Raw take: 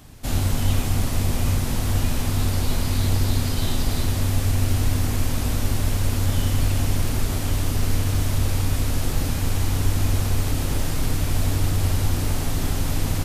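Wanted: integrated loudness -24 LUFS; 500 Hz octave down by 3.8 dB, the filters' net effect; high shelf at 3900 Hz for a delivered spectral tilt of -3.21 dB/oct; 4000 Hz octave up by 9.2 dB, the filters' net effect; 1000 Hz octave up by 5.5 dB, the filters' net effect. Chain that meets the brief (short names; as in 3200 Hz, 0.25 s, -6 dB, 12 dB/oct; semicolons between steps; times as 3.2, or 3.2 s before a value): bell 500 Hz -8 dB; bell 1000 Hz +8.5 dB; high shelf 3900 Hz +6.5 dB; bell 4000 Hz +7 dB; gain -2.5 dB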